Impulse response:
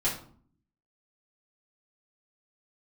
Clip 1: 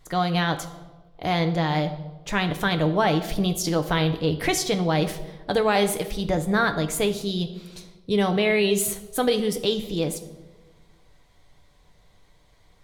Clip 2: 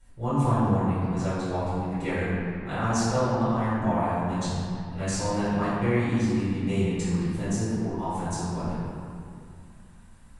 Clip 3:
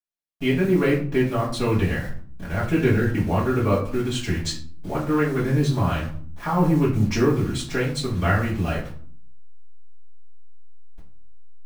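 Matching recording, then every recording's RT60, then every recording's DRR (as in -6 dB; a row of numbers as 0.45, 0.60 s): 3; 1.3, 2.4, 0.50 s; 6.0, -15.0, -8.0 dB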